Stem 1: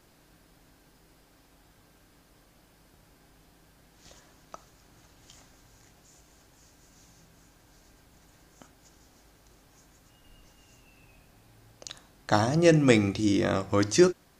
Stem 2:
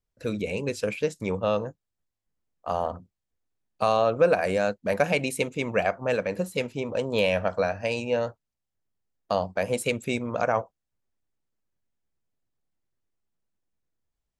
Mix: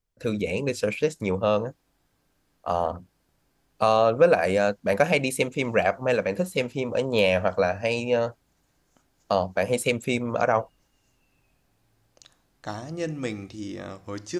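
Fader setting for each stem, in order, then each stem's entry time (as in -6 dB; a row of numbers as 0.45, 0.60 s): -10.5, +2.5 dB; 0.35, 0.00 s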